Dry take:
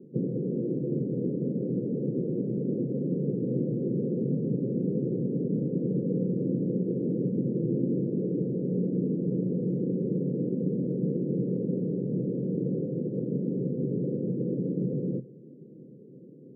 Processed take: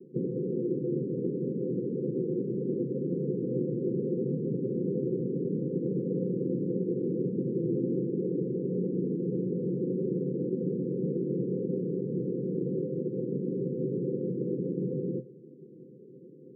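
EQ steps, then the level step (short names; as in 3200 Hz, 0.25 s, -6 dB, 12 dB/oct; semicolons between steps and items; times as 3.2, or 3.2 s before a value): band-pass 390 Hz, Q 0.84; rippled Chebyshev low-pass 530 Hz, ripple 6 dB; +3.5 dB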